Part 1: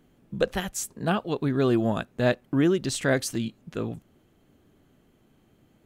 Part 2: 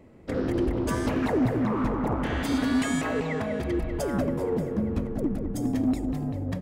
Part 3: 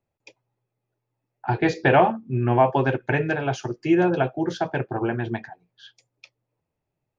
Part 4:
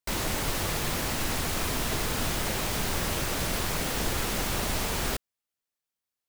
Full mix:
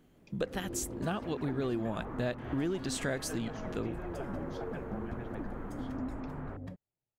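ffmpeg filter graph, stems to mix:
-filter_complex "[0:a]volume=0.75[s0];[1:a]highshelf=f=3800:g=-7,adelay=150,volume=0.224[s1];[2:a]acompressor=threshold=0.0501:ratio=6,volume=0.188[s2];[3:a]lowpass=f=1500:w=0.5412,lowpass=f=1500:w=1.3066,adelay=1400,volume=0.237[s3];[s0][s1][s2][s3]amix=inputs=4:normalize=0,acompressor=threshold=0.0251:ratio=3"

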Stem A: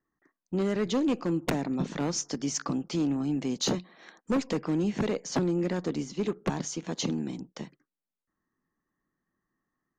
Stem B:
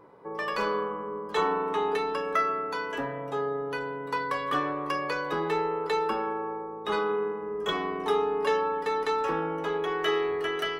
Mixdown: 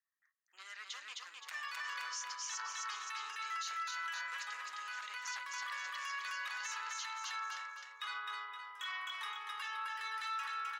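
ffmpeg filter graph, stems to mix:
-filter_complex "[0:a]volume=0.841,asplit=3[s0][s1][s2];[s1]volume=0.668[s3];[1:a]alimiter=limit=0.0794:level=0:latency=1,adelay=1150,volume=1.41,asplit=2[s4][s5];[s5]volume=0.596[s6];[s2]apad=whole_len=526931[s7];[s4][s7]sidechaincompress=threshold=0.0224:ratio=8:attack=16:release=184[s8];[s3][s6]amix=inputs=2:normalize=0,aecho=0:1:260|520|780|1040|1300:1|0.37|0.137|0.0507|0.0187[s9];[s0][s8][s9]amix=inputs=3:normalize=0,flanger=delay=1:depth=3.6:regen=-80:speed=0.42:shape=sinusoidal,highpass=f=1400:w=0.5412,highpass=f=1400:w=1.3066,alimiter=level_in=2.66:limit=0.0631:level=0:latency=1:release=21,volume=0.376"

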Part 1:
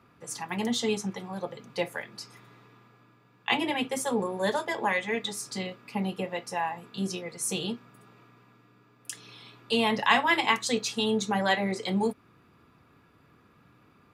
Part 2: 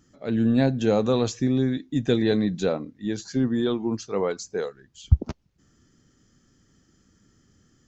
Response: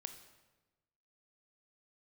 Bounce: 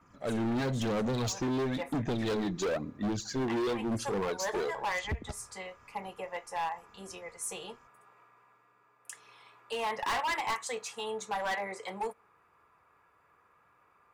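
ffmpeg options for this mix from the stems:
-filter_complex "[0:a]equalizer=f=125:t=o:w=1:g=-7,equalizer=f=250:t=o:w=1:g=-12,equalizer=f=500:t=o:w=1:g=5,equalizer=f=1000:t=o:w=1:g=10,equalizer=f=2000:t=o:w=1:g=6,equalizer=f=4000:t=o:w=1:g=-7,equalizer=f=8000:t=o:w=1:g=6,volume=0.299,asplit=2[s0][s1];[s1]volume=0.075[s2];[1:a]agate=range=0.0224:threshold=0.002:ratio=3:detection=peak,aphaser=in_gain=1:out_gain=1:delay=2.9:decay=0.64:speed=0.99:type=sinusoidal,acompressor=threshold=0.126:ratio=10,volume=0.75,asplit=3[s3][s4][s5];[s4]volume=0.141[s6];[s5]apad=whole_len=623519[s7];[s0][s7]sidechaincompress=threshold=0.0158:ratio=8:attack=39:release=148[s8];[2:a]atrim=start_sample=2205[s9];[s2][s6]amix=inputs=2:normalize=0[s10];[s10][s9]afir=irnorm=-1:irlink=0[s11];[s8][s3][s11]amix=inputs=3:normalize=0,asoftclip=type=hard:threshold=0.0376"

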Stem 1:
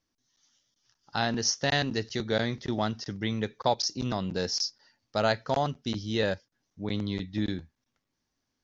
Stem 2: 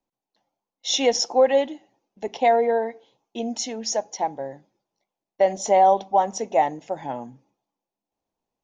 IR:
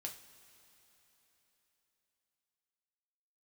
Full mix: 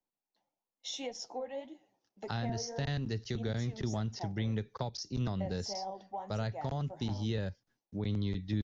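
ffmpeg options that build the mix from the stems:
-filter_complex "[0:a]equalizer=f=410:w=4.4:g=4,agate=range=0.0224:threshold=0.00141:ratio=3:detection=peak,adelay=1150,volume=1.33[s0];[1:a]flanger=delay=4.9:depth=9.6:regen=54:speed=1.7:shape=triangular,volume=0.562[s1];[s0][s1]amix=inputs=2:normalize=0,acrossover=split=160[s2][s3];[s3]acompressor=threshold=0.0112:ratio=5[s4];[s2][s4]amix=inputs=2:normalize=0"

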